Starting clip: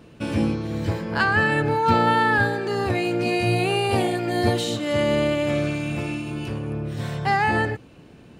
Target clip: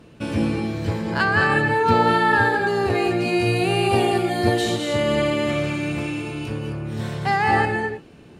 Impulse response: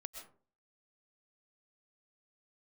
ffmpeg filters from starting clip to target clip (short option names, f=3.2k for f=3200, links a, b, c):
-filter_complex "[1:a]atrim=start_sample=2205,afade=t=out:st=0.2:d=0.01,atrim=end_sample=9261,asetrate=27342,aresample=44100[a];[0:a][a]afir=irnorm=-1:irlink=0,volume=3dB"